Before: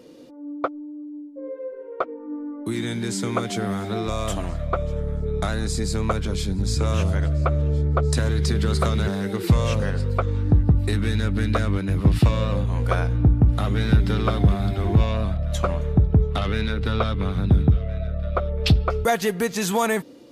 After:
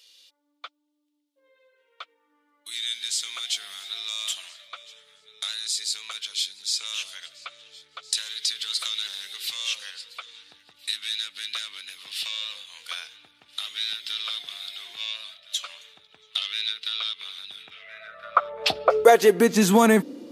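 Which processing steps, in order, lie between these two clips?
high-pass sweep 3.4 kHz -> 230 Hz, 17.50–19.57 s; trim +2 dB

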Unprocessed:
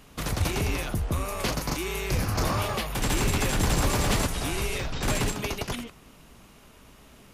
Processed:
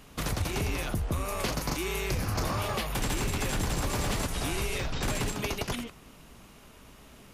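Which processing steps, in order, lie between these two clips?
compression, threshold -26 dBFS, peak gain reduction 7 dB

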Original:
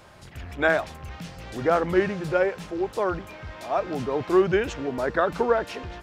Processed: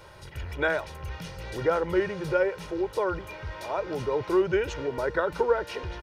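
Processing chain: in parallel at +3 dB: compression, threshold -29 dBFS, peak gain reduction 14.5 dB; on the sum: band-stop 7.4 kHz, Q 7; comb 2.1 ms, depth 60%; trim -8 dB

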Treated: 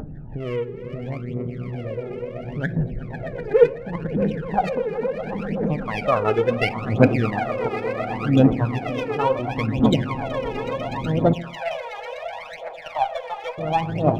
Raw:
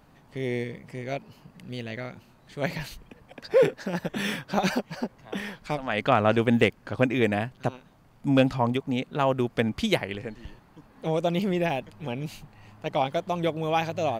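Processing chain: local Wiener filter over 41 samples; treble shelf 6.1 kHz -8 dB; echo with a slow build-up 124 ms, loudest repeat 8, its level -14 dB; phaser 0.71 Hz, delay 2.5 ms, feedback 75%; upward compressor, threshold -20 dBFS; 11.33–13.58 s: Chebyshev high-pass 580 Hz, order 4; reverberation RT60 0.50 s, pre-delay 6 ms, DRR 12 dB; loudest bins only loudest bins 64; sliding maximum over 3 samples; trim -1 dB

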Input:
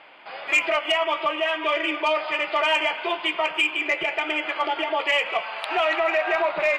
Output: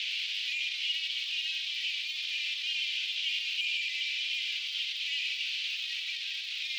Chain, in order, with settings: one-bit comparator; low-pass 3.9 kHz 24 dB/octave; crackle 270 per s -45 dBFS; steep high-pass 2.8 kHz 36 dB/octave; on a send: flutter echo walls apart 11.4 m, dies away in 0.42 s

